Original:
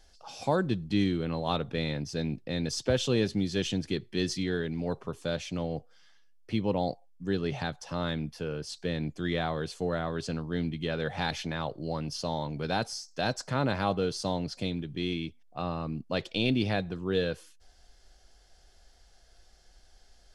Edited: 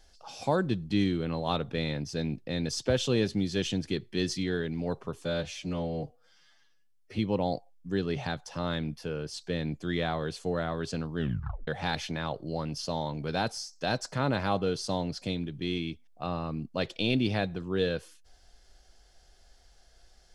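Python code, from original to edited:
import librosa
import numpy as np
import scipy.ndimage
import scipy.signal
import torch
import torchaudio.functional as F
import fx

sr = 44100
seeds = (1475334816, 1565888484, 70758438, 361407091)

y = fx.edit(x, sr, fx.stretch_span(start_s=5.25, length_s=1.29, factor=1.5),
    fx.tape_stop(start_s=10.53, length_s=0.5), tone=tone)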